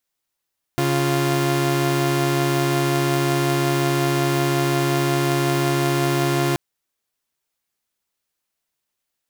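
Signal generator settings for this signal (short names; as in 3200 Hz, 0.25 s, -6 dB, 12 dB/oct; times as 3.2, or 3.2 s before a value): chord C#3/F4 saw, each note -18 dBFS 5.78 s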